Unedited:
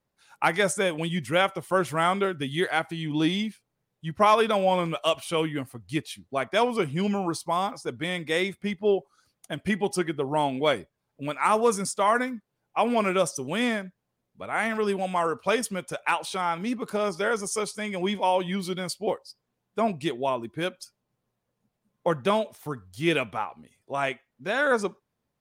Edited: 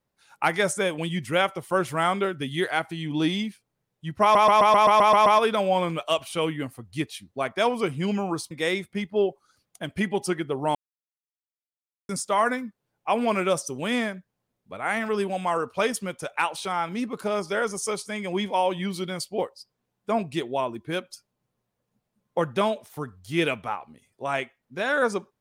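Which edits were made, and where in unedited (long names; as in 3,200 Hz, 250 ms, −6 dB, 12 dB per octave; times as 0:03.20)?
0:04.22: stutter 0.13 s, 9 plays
0:07.47–0:08.20: remove
0:10.44–0:11.78: silence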